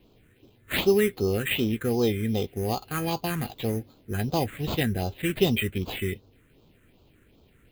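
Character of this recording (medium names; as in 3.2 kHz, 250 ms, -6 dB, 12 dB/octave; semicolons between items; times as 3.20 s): aliases and images of a low sample rate 5.6 kHz, jitter 0%; phasing stages 4, 2.6 Hz, lowest notch 780–1800 Hz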